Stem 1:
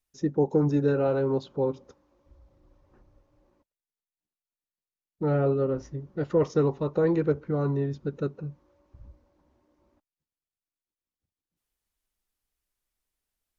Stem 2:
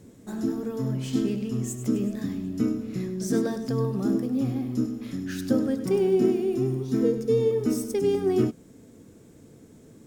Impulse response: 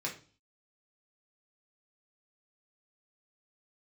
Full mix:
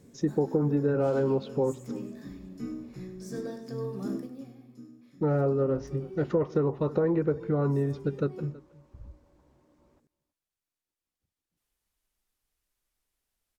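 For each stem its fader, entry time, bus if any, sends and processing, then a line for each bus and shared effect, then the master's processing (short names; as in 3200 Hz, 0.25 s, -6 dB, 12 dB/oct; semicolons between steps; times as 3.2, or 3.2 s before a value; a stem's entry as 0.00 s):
+2.5 dB, 0.00 s, no send, echo send -22.5 dB, treble ducked by the level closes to 2000 Hz, closed at -20.5 dBFS
4.08 s -7 dB -> 4.56 s -18 dB, 0.00 s, send -7.5 dB, no echo send, auto duck -15 dB, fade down 1.05 s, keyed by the first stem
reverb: on, RT60 0.40 s, pre-delay 3 ms
echo: echo 0.323 s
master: compressor 5:1, threshold -22 dBFS, peak gain reduction 7 dB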